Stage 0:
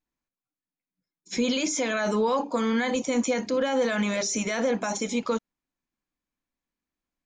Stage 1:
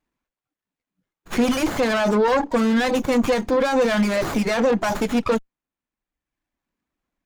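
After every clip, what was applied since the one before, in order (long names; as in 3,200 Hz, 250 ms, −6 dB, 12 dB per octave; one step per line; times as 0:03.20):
reverb reduction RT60 1 s
harmonic generator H 5 −19 dB, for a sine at −15 dBFS
windowed peak hold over 9 samples
level +6 dB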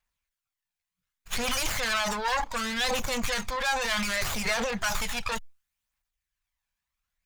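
guitar amp tone stack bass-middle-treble 10-0-10
transient designer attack 0 dB, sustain +7 dB
phase shifter 0.67 Hz, delay 1.3 ms, feedback 36%
level +2.5 dB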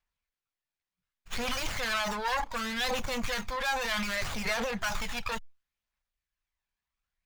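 running median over 5 samples
level −2.5 dB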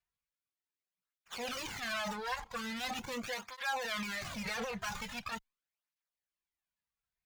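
through-zero flanger with one copy inverted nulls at 0.42 Hz, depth 3.7 ms
level −3.5 dB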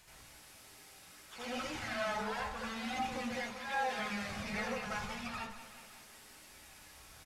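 linear delta modulator 64 kbit/s, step −48 dBFS
repeating echo 185 ms, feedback 59%, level −12 dB
convolution reverb RT60 0.35 s, pre-delay 72 ms, DRR −7 dB
level −7.5 dB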